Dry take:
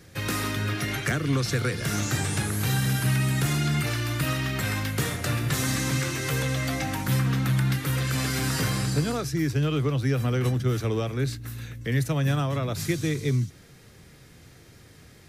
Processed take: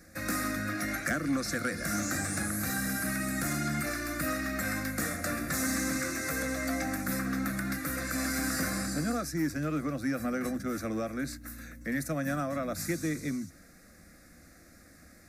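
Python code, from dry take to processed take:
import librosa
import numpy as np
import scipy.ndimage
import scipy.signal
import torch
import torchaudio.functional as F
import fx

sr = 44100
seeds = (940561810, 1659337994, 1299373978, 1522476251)

y = fx.fixed_phaser(x, sr, hz=620.0, stages=8)
y = 10.0 ** (-19.0 / 20.0) * np.tanh(y / 10.0 ** (-19.0 / 20.0))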